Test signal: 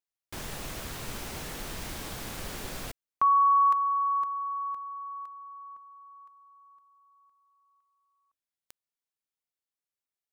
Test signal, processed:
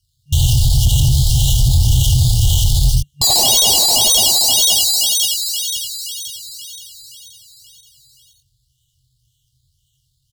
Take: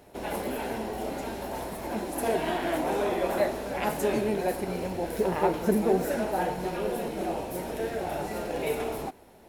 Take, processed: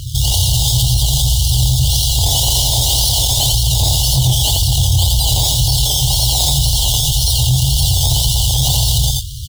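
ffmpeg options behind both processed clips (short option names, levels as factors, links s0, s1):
-filter_complex "[0:a]acrusher=samples=12:mix=1:aa=0.000001:lfo=1:lforange=7.2:lforate=1.9,highpass=f=44:p=1,asplit=2[s0][s1];[s1]adelay=24,volume=0.501[s2];[s0][s2]amix=inputs=2:normalize=0,acompressor=threshold=0.0501:ratio=4:attack=26:release=117,afftfilt=real='re*(1-between(b*sr/4096,150,2800))':imag='im*(1-between(b*sr/4096,150,2800))':win_size=4096:overlap=0.75,bandreject=f=161.5:t=h:w=4,bandreject=f=323:t=h:w=4,bandreject=f=484.5:t=h:w=4,asplit=2[s3][s4];[s4]aecho=0:1:86:0.668[s5];[s3][s5]amix=inputs=2:normalize=0,asoftclip=type=tanh:threshold=0.0251,firequalizer=gain_entry='entry(370,0);entry(820,11);entry(1300,-24);entry(3000,-9);entry(8100,-4);entry(14000,-2)':delay=0.05:min_phase=1,acontrast=75,highshelf=f=10000:g=-9.5,alimiter=level_in=63.1:limit=0.891:release=50:level=0:latency=1,volume=0.596"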